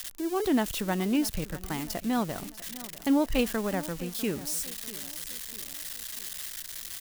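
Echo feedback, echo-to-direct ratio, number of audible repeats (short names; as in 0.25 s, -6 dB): 48%, -16.0 dB, 3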